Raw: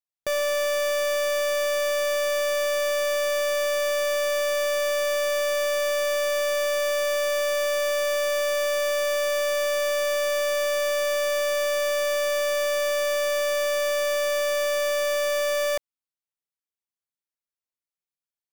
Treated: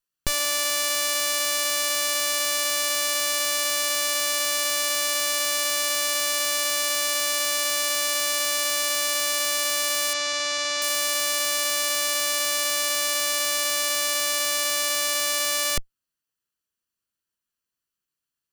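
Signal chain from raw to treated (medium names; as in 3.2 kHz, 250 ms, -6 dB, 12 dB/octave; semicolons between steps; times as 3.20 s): comb filter that takes the minimum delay 0.69 ms; 10.13–10.82 s: low-pass 6.7 kHz 24 dB/octave; trim +8.5 dB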